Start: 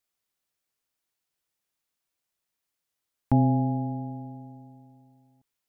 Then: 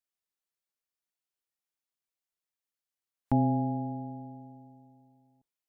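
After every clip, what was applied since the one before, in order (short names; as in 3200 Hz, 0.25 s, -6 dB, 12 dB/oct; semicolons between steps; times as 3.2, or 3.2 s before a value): spectral noise reduction 8 dB; bell 80 Hz -5.5 dB 2.4 oct; gain -2 dB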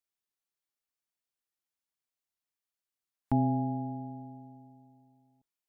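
notch 540 Hz, Q 12; gain -1.5 dB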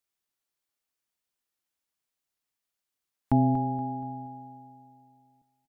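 feedback echo 0.237 s, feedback 42%, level -13 dB; gain +4.5 dB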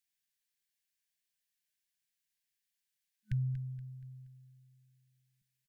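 FFT band-reject 210–1500 Hz; bell 75 Hz -10.5 dB 1.7 oct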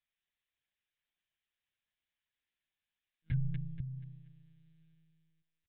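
on a send: echo 0.234 s -8 dB; on the sum: monotone LPC vocoder at 8 kHz 160 Hz; gain +1 dB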